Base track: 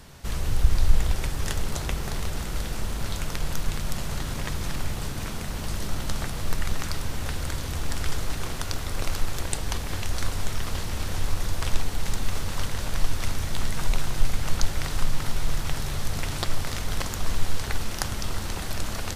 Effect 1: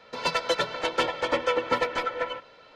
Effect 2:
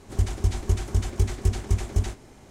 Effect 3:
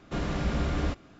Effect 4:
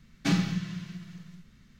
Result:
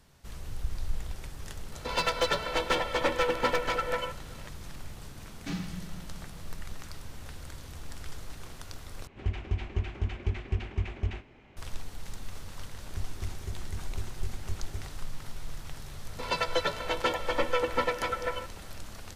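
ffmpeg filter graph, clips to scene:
ffmpeg -i bed.wav -i cue0.wav -i cue1.wav -i cue2.wav -i cue3.wav -filter_complex "[1:a]asplit=2[link_01][link_02];[2:a]asplit=2[link_03][link_04];[0:a]volume=-13.5dB[link_05];[link_01]aeval=exprs='clip(val(0),-1,0.0447)':channel_layout=same[link_06];[link_03]lowpass=frequency=2600:width_type=q:width=2.8[link_07];[link_02]highshelf=frequency=8100:gain=-7[link_08];[link_05]asplit=2[link_09][link_10];[link_09]atrim=end=9.074[link_11];[link_07]atrim=end=2.5,asetpts=PTS-STARTPTS,volume=-7.5dB[link_12];[link_10]atrim=start=11.566[link_13];[link_06]atrim=end=2.75,asetpts=PTS-STARTPTS,afade=type=in:duration=0.004:curve=hsin,afade=type=out:start_time=2.746:duration=0.004:curve=hsin,adelay=1720[link_14];[4:a]atrim=end=1.79,asetpts=PTS-STARTPTS,volume=-10dB,afade=type=in:duration=0.004:curve=hsin,afade=type=out:start_time=1.786:duration=0.004:curve=hsin,adelay=229761S[link_15];[link_04]atrim=end=2.5,asetpts=PTS-STARTPTS,volume=-15dB,afade=type=in:duration=0.004:curve=hsin,afade=type=out:start_time=2.496:duration=0.004:curve=hsin,adelay=12780[link_16];[link_08]atrim=end=2.75,asetpts=PTS-STARTPTS,volume=-3dB,afade=type=in:duration=0.004:curve=hsin,afade=type=out:start_time=2.746:duration=0.004:curve=hsin,adelay=16060[link_17];[link_11][link_12]acrossfade=duration=0.004:curve1=hsin:curve2=hsin[link_18];[link_18][link_13]acrossfade=duration=0.004:curve1=hsin:curve2=hsin[link_19];[link_19][link_14][link_15][link_16][link_17]amix=inputs=5:normalize=0" out.wav

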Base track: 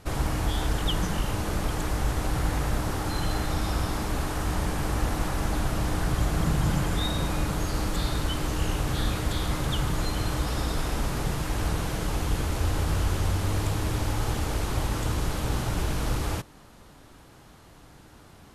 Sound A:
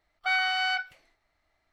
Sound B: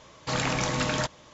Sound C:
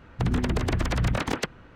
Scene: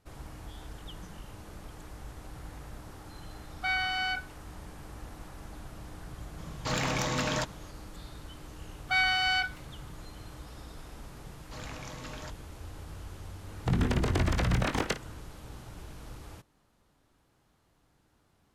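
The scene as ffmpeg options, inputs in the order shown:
ffmpeg -i bed.wav -i cue0.wav -i cue1.wav -i cue2.wav -filter_complex "[1:a]asplit=2[link_01][link_02];[2:a]asplit=2[link_03][link_04];[0:a]volume=-18dB[link_05];[link_03]aeval=exprs='clip(val(0),-1,0.0668)':channel_layout=same[link_06];[link_02]highshelf=frequency=3700:gain=6[link_07];[3:a]aecho=1:1:22|56:0.355|0.188[link_08];[link_01]atrim=end=1.72,asetpts=PTS-STARTPTS,volume=-4dB,afade=type=in:duration=0.004:curve=hsin,afade=type=out:start_time=1.716:duration=0.004:curve=hsin,adelay=3380[link_09];[link_06]atrim=end=1.33,asetpts=PTS-STARTPTS,volume=-2.5dB,afade=type=in:duration=0.004:curve=hsin,afade=type=out:start_time=1.326:duration=0.004:curve=hsin,adelay=6380[link_10];[link_07]atrim=end=1.72,asetpts=PTS-STARTPTS,volume=-1.5dB,afade=type=in:duration=0.004:curve=hsin,afade=type=out:start_time=1.716:duration=0.004:curve=hsin,adelay=8650[link_11];[link_04]atrim=end=1.33,asetpts=PTS-STARTPTS,volume=-16.5dB,afade=type=in:duration=0.004:curve=hsin,afade=type=out:start_time=1.326:duration=0.004:curve=hsin,adelay=11240[link_12];[link_08]atrim=end=1.75,asetpts=PTS-STARTPTS,volume=-2.5dB,afade=type=in:duration=0.004:curve=hsin,afade=type=out:start_time=1.746:duration=0.004:curve=hsin,adelay=13470[link_13];[link_05][link_09][link_10][link_11][link_12][link_13]amix=inputs=6:normalize=0" out.wav

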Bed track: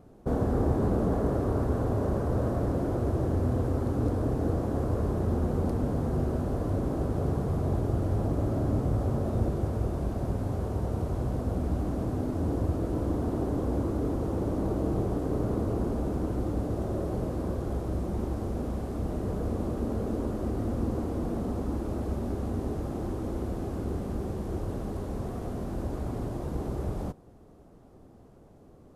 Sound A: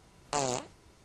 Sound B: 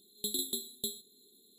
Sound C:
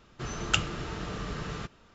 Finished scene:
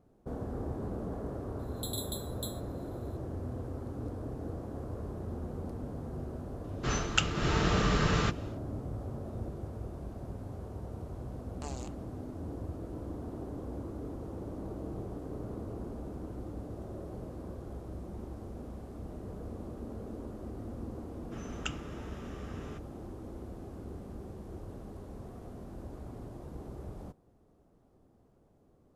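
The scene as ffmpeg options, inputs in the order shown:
ffmpeg -i bed.wav -i cue0.wav -i cue1.wav -i cue2.wav -filter_complex "[3:a]asplit=2[link_01][link_02];[0:a]volume=-11.5dB[link_03];[link_01]dynaudnorm=framelen=140:gausssize=3:maxgain=14.5dB[link_04];[link_02]equalizer=frequency=4300:width=5.7:gain=-14[link_05];[2:a]atrim=end=1.58,asetpts=PTS-STARTPTS,volume=-5dB,afade=type=in:duration=0.004:curve=hsin,afade=type=out:start_time=1.576:duration=0.004:curve=hsin,adelay=1590[link_06];[link_04]atrim=end=1.94,asetpts=PTS-STARTPTS,volume=-6dB,afade=type=in:duration=0.004:curve=hsin,afade=type=out:start_time=1.936:duration=0.004:curve=hsin,adelay=6640[link_07];[1:a]atrim=end=1.04,asetpts=PTS-STARTPTS,volume=-14.5dB,afade=type=in:duration=0.004:curve=hsin,afade=type=out:start_time=1.036:duration=0.004:curve=hsin,adelay=11290[link_08];[link_05]atrim=end=1.94,asetpts=PTS-STARTPTS,volume=-11.5dB,afade=type=in:duration=0.004:curve=hsin,afade=type=out:start_time=1.936:duration=0.004:curve=hsin,adelay=21120[link_09];[link_03][link_06][link_07][link_08][link_09]amix=inputs=5:normalize=0" out.wav

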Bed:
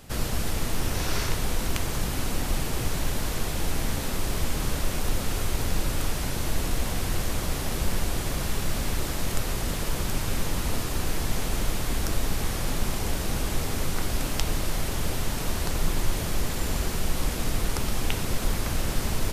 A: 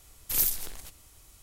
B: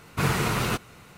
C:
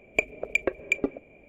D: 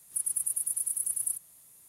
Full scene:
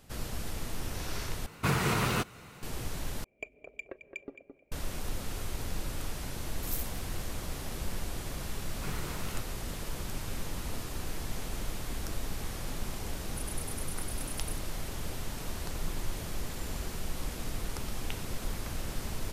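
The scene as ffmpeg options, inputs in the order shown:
ffmpeg -i bed.wav -i cue0.wav -i cue1.wav -i cue2.wav -i cue3.wav -filter_complex "[2:a]asplit=2[link_01][link_02];[0:a]volume=-9.5dB[link_03];[link_01]alimiter=limit=-17dB:level=0:latency=1:release=199[link_04];[3:a]asplit=2[link_05][link_06];[link_06]adelay=217,lowpass=frequency=2000:poles=1,volume=-7.5dB,asplit=2[link_07][link_08];[link_08]adelay=217,lowpass=frequency=2000:poles=1,volume=0.25,asplit=2[link_09][link_10];[link_10]adelay=217,lowpass=frequency=2000:poles=1,volume=0.25[link_11];[link_05][link_07][link_09][link_11]amix=inputs=4:normalize=0[link_12];[link_03]asplit=3[link_13][link_14][link_15];[link_13]atrim=end=1.464[link_16];[link_04]atrim=end=1.17,asetpts=PTS-STARTPTS,volume=-1dB[link_17];[link_14]atrim=start=2.626:end=3.244[link_18];[link_12]atrim=end=1.48,asetpts=PTS-STARTPTS,volume=-17.5dB[link_19];[link_15]atrim=start=4.716[link_20];[1:a]atrim=end=1.42,asetpts=PTS-STARTPTS,volume=-13.5dB,afade=type=in:duration=0.004:curve=hsin,afade=type=out:start_time=1.416:duration=0.004:curve=hsin,adelay=6330[link_21];[link_02]atrim=end=1.17,asetpts=PTS-STARTPTS,volume=-17dB,afade=type=in:duration=0.004:curve=hsin,afade=type=out:start_time=1.166:duration=0.004:curve=hsin,adelay=8640[link_22];[4:a]atrim=end=1.88,asetpts=PTS-STARTPTS,volume=-13.5dB,afade=type=in:duration=0.004:curve=hsin,afade=type=out:start_time=1.876:duration=0.004:curve=hsin,adelay=13210[link_23];[link_16][link_17]acrossfade=duration=0.004:curve1=hsin:curve2=hsin[link_24];[link_24][link_18]acrossfade=duration=0.004:curve1=hsin:curve2=hsin[link_25];[link_25][link_19]acrossfade=duration=0.004:curve1=hsin:curve2=hsin[link_26];[link_26][link_20]acrossfade=duration=0.004:curve1=hsin:curve2=hsin[link_27];[link_27][link_21][link_22][link_23]amix=inputs=4:normalize=0" out.wav

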